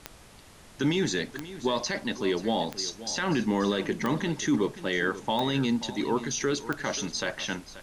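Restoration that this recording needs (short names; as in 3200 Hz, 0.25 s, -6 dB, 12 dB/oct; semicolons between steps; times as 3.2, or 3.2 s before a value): de-click; denoiser 25 dB, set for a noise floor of -49 dBFS; inverse comb 0.533 s -15 dB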